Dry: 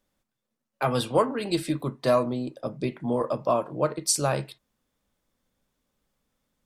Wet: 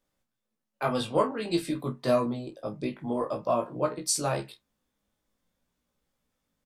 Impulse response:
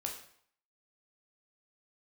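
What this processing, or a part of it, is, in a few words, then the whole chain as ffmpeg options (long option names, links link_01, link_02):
double-tracked vocal: -filter_complex "[0:a]asettb=1/sr,asplit=3[link_01][link_02][link_03];[link_01]atrim=end=0.934[link_04];[link_02]atrim=start=0.93:end=1.58,asetpts=PTS-STARTPTS,afade=type=in:duration=0.004:curve=qsin,afade=type=out:start_time=0.646:duration=0.004:curve=qsin,lowpass=9000[link_05];[link_03]atrim=start=1.576[link_06];[link_04][link_05]acrossfade=duration=0.004:curve1=hsin:curve2=qsin[link_07];[link_07][link_06]acrossfade=duration=0.004:curve1=qsin:curve2=hsin,asplit=2[link_08][link_09];[link_09]adelay=29,volume=-11.5dB[link_10];[link_08][link_10]amix=inputs=2:normalize=0,flanger=delay=16.5:depth=3:speed=0.5"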